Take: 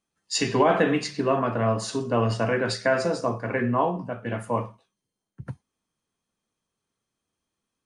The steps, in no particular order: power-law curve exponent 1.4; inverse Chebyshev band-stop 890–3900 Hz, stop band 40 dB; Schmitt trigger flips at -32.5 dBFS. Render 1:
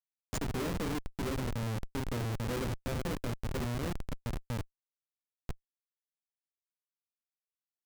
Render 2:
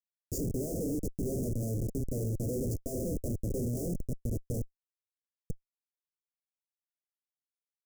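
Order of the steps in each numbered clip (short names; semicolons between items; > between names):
inverse Chebyshev band-stop > power-law curve > Schmitt trigger; power-law curve > Schmitt trigger > inverse Chebyshev band-stop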